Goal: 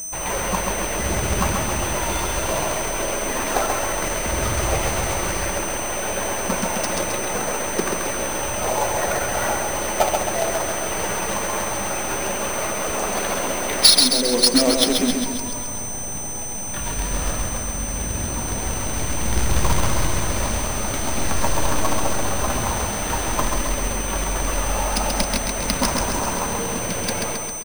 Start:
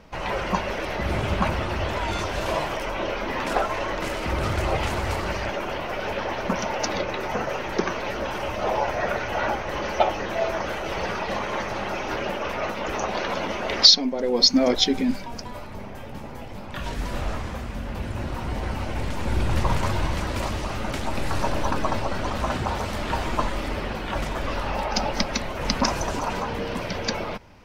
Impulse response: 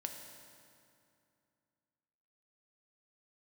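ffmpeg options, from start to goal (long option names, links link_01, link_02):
-af "acrusher=bits=2:mode=log:mix=0:aa=0.000001,aecho=1:1:134|268|402|536|670|804|938|1072:0.631|0.353|0.198|0.111|0.0621|0.0347|0.0195|0.0109,aeval=exprs='val(0)+0.0398*sin(2*PI*6100*n/s)':channel_layout=same,acrusher=samples=3:mix=1:aa=0.000001"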